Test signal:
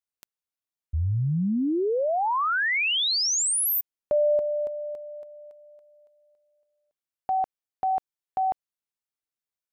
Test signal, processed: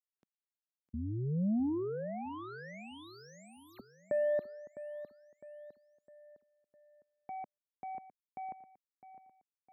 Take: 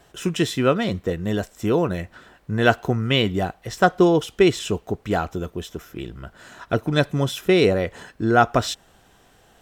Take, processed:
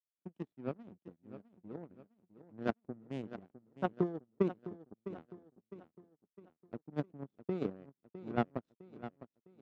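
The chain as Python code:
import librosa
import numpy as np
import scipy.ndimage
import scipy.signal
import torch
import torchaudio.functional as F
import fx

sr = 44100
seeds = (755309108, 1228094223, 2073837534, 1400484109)

y = fx.power_curve(x, sr, exponent=3.0)
y = fx.bandpass_q(y, sr, hz=220.0, q=1.4)
y = fx.echo_feedback(y, sr, ms=657, feedback_pct=44, wet_db=-13.0)
y = F.gain(torch.from_numpy(y), 4.0).numpy()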